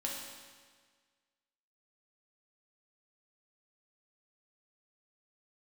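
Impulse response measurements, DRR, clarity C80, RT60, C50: -3.0 dB, 3.0 dB, 1.6 s, 1.0 dB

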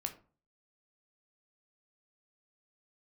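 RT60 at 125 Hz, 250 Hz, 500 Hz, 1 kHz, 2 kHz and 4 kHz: 0.55 s, 0.45 s, 0.40 s, 0.40 s, 0.30 s, 0.20 s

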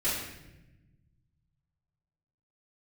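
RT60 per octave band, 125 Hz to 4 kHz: 2.6 s, 1.8 s, 1.1 s, 0.80 s, 0.95 s, 0.75 s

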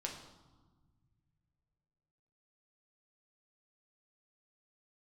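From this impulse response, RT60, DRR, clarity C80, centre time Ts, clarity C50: 1.4 s, 0.0 dB, 8.5 dB, 31 ms, 6.5 dB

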